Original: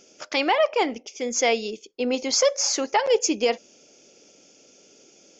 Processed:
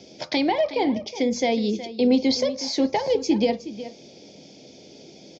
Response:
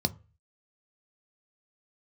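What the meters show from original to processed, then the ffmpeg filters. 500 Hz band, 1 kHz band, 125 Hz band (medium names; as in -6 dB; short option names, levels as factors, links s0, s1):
-0.5 dB, -3.0 dB, no reading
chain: -filter_complex "[0:a]acrossover=split=260[s0][s1];[s1]acompressor=threshold=0.02:ratio=3[s2];[s0][s2]amix=inputs=2:normalize=0,aecho=1:1:367:0.2,asplit=2[s3][s4];[1:a]atrim=start_sample=2205,asetrate=39690,aresample=44100[s5];[s4][s5]afir=irnorm=-1:irlink=0,volume=1.41[s6];[s3][s6]amix=inputs=2:normalize=0,volume=0.631"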